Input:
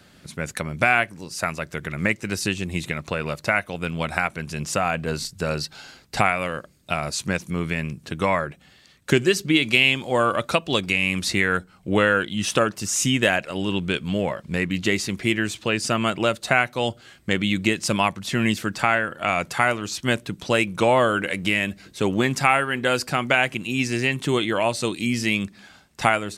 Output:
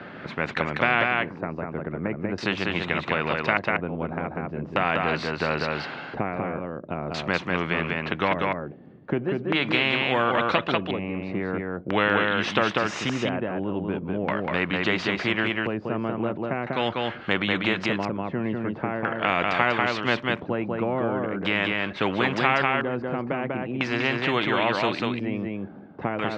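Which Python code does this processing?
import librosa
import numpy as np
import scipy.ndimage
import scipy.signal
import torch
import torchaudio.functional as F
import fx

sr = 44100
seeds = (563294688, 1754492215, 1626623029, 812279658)

y = fx.filter_lfo_lowpass(x, sr, shape='square', hz=0.42, low_hz=380.0, high_hz=1800.0, q=0.85)
y = fx.bandpass_edges(y, sr, low_hz=180.0, high_hz=3700.0)
y = y + 10.0 ** (-4.5 / 20.0) * np.pad(y, (int(194 * sr / 1000.0), 0))[:len(y)]
y = fx.spectral_comp(y, sr, ratio=2.0)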